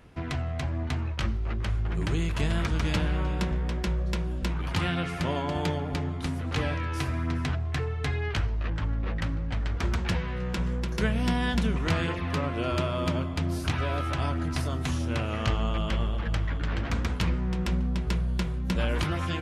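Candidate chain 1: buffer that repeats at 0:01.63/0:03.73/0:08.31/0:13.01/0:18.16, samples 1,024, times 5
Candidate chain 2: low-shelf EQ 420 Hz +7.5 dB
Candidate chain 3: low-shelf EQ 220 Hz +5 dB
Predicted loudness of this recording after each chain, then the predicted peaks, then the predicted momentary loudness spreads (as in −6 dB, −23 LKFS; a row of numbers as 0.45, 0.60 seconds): −29.5, −23.5, −26.0 LKFS; −13.5, −7.0, −10.0 dBFS; 4, 3, 3 LU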